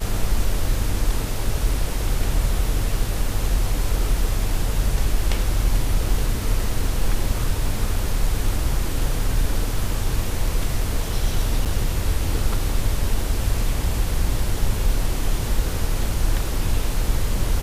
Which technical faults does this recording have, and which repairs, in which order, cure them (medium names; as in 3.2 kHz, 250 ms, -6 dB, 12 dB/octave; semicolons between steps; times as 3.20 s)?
11.65–11.66 s: dropout 7.9 ms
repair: interpolate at 11.65 s, 7.9 ms